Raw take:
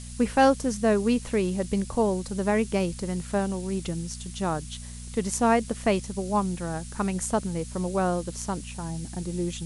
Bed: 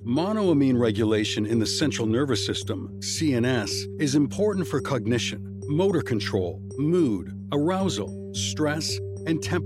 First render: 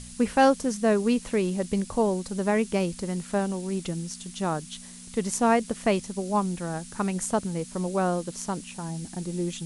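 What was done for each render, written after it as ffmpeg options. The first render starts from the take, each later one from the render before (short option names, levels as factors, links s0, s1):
-af "bandreject=f=60:t=h:w=4,bandreject=f=120:t=h:w=4"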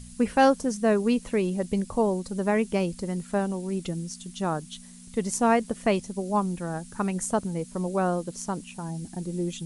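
-af "afftdn=nr=7:nf=-44"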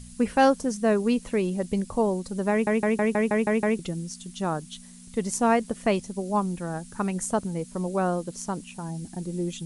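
-filter_complex "[0:a]asplit=9[s0][s1][s2][s3][s4][s5][s6][s7][s8];[s0]atrim=end=2.672[s9];[s1]atrim=start=2.508:end=2.672[s10];[s2]atrim=start=2.508:end=2.672[s11];[s3]atrim=start=2.508:end=2.672[s12];[s4]atrim=start=2.508:end=2.672[s13];[s5]atrim=start=2.508:end=2.672[s14];[s6]atrim=start=2.508:end=2.672[s15];[s7]atrim=start=2.508:end=2.672[s16];[s8]atrim=start=3.788[s17];[s9][s10]acrossfade=d=0.004:c1=hsin:c2=hsin[s18];[s18][s11]acrossfade=d=0.004:c1=hsin:c2=hsin[s19];[s19][s12]acrossfade=d=0.004:c1=hsin:c2=hsin[s20];[s20][s13]acrossfade=d=0.004:c1=hsin:c2=hsin[s21];[s21][s14]acrossfade=d=0.004:c1=hsin:c2=hsin[s22];[s22][s15]acrossfade=d=0.004:c1=hsin:c2=hsin[s23];[s23][s16]acrossfade=d=0.004:c1=hsin:c2=hsin[s24];[s24][s17]acrossfade=d=0.004:c1=hsin:c2=hsin"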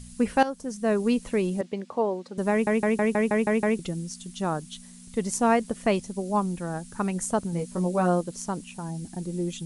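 -filter_complex "[0:a]asettb=1/sr,asplit=3[s0][s1][s2];[s0]atrim=end=1.614[s3];[s1]atrim=start=1.61:end=2.38,asetpts=PTS-STARTPTS,afade=t=in:d=0.004:c=qsin,afade=t=out:st=0.766:d=0.004:c=qsin,highpass=310,lowpass=3600[s4];[s2]atrim=start=2.376[s5];[s3][s4]acrossfade=d=0.004:c1=hsin:c2=qsin[s6];[s6][s5]acrossfade=d=0.004:c1=qsin:c2=hsin,asettb=1/sr,asplit=3[s7][s8][s9];[s7]atrim=end=7.514[s10];[s8]atrim=start=7.51:end=8.21,asetpts=PTS-STARTPTS,afade=t=in:d=0.004:c=qsin,afade=t=out:st=0.696:d=0.004:c=qsin,asplit=2[s11][s12];[s12]adelay=17,volume=0.596[s13];[s11][s13]amix=inputs=2:normalize=0,atrim=end_sample=30870[s14];[s9]atrim=start=8.206[s15];[s10][s14]acrossfade=d=0.004:c1=hsin:c2=qsin[s16];[s16][s15]acrossfade=d=0.004:c1=qsin:c2=hsin,asplit=2[s17][s18];[s17]atrim=end=0.43,asetpts=PTS-STARTPTS,afade=t=out:st=0.426:d=0.004:c=hsin:silence=0.16788[s19];[s18]atrim=start=0.43,asetpts=PTS-STARTPTS,afade=t=in:d=0.62:silence=0.16788[s20];[s19][s20]concat=n=2:v=0:a=1"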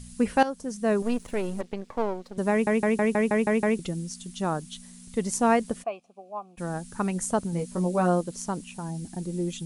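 -filter_complex "[0:a]asettb=1/sr,asplit=3[s0][s1][s2];[s0]atrim=end=1.024[s3];[s1]atrim=start=1.02:end=2.37,asetpts=PTS-STARTPTS,afade=t=in:d=0.004:c=qsin,afade=t=out:st=1.346:d=0.004:c=qsin,aeval=exprs='if(lt(val(0),0),0.251*val(0),val(0))':c=same[s4];[s2]atrim=start=2.366[s5];[s3][s4]acrossfade=d=0.004:c1=hsin:c2=qsin[s6];[s6][s5]acrossfade=d=0.004:c1=qsin:c2=hsin,asplit=3[s7][s8][s9];[s7]afade=t=out:st=5.82:d=0.02[s10];[s8]asplit=3[s11][s12][s13];[s11]bandpass=f=730:t=q:w=8,volume=1[s14];[s12]bandpass=f=1090:t=q:w=8,volume=0.501[s15];[s13]bandpass=f=2440:t=q:w=8,volume=0.355[s16];[s14][s15][s16]amix=inputs=3:normalize=0,afade=t=in:st=5.82:d=0.02,afade=t=out:st=6.57:d=0.02[s17];[s9]afade=t=in:st=6.57:d=0.02[s18];[s10][s17][s18]amix=inputs=3:normalize=0"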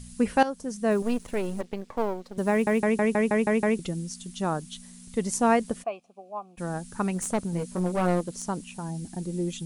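-filter_complex "[0:a]asettb=1/sr,asplit=3[s0][s1][s2];[s0]atrim=end=0.914[s3];[s1]atrim=start=0.91:end=2.81,asetpts=PTS-STARTPTS,afade=t=in:d=0.004:c=qsin,afade=t=out:st=1.896:d=0.004:c=qsin,acrusher=bits=9:mode=log:mix=0:aa=0.000001[s4];[s2]atrim=start=2.806[s5];[s3][s4]acrossfade=d=0.004:c1=hsin:c2=qsin[s6];[s6][s5]acrossfade=d=0.004:c1=qsin:c2=hsin,asplit=3[s7][s8][s9];[s7]afade=t=out:st=7.12:d=0.02[s10];[s8]aeval=exprs='clip(val(0),-1,0.0398)':c=same,afade=t=in:st=7.12:d=0.02,afade=t=out:st=8.41:d=0.02[s11];[s9]afade=t=in:st=8.41:d=0.02[s12];[s10][s11][s12]amix=inputs=3:normalize=0"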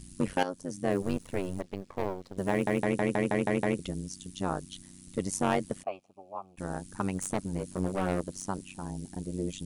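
-filter_complex "[0:a]acrossover=split=2800[s0][s1];[s0]asoftclip=type=hard:threshold=0.119[s2];[s2][s1]amix=inputs=2:normalize=0,tremolo=f=94:d=0.974"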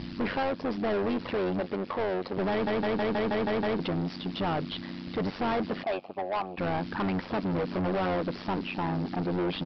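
-filter_complex "[0:a]asplit=2[s0][s1];[s1]highpass=f=720:p=1,volume=50.1,asoftclip=type=tanh:threshold=0.178[s2];[s0][s2]amix=inputs=2:normalize=0,lowpass=f=1200:p=1,volume=0.501,aresample=11025,asoftclip=type=tanh:threshold=0.0562,aresample=44100"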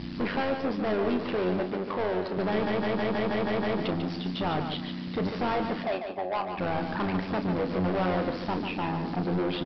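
-filter_complex "[0:a]asplit=2[s0][s1];[s1]adelay=33,volume=0.316[s2];[s0][s2]amix=inputs=2:normalize=0,aecho=1:1:145|290|435:0.447|0.121|0.0326"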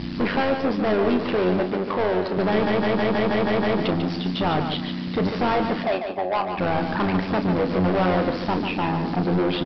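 -af "volume=2.11"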